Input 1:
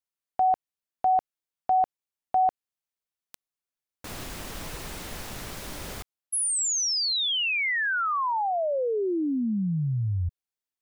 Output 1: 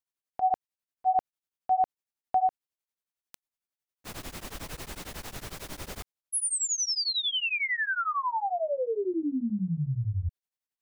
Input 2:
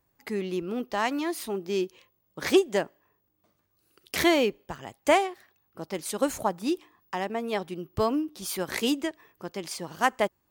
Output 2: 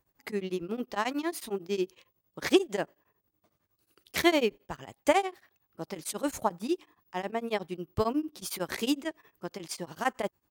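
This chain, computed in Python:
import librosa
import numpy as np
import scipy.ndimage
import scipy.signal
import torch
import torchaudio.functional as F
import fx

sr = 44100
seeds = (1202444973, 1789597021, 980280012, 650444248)

y = x * np.abs(np.cos(np.pi * 11.0 * np.arange(len(x)) / sr))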